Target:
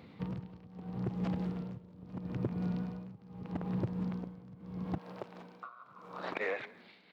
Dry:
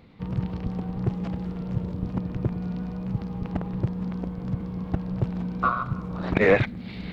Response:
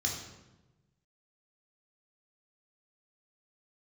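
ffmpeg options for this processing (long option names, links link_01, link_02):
-filter_complex "[0:a]acompressor=threshold=-28dB:ratio=16,asplit=7[link_01][link_02][link_03][link_04][link_05][link_06][link_07];[link_02]adelay=167,afreqshift=-59,volume=-16dB[link_08];[link_03]adelay=334,afreqshift=-118,volume=-20dB[link_09];[link_04]adelay=501,afreqshift=-177,volume=-24dB[link_10];[link_05]adelay=668,afreqshift=-236,volume=-28dB[link_11];[link_06]adelay=835,afreqshift=-295,volume=-32.1dB[link_12];[link_07]adelay=1002,afreqshift=-354,volume=-36.1dB[link_13];[link_01][link_08][link_09][link_10][link_11][link_12][link_13]amix=inputs=7:normalize=0,tremolo=f=0.78:d=0.89,asetnsamples=nb_out_samples=441:pad=0,asendcmd='4.98 highpass f 500',highpass=110"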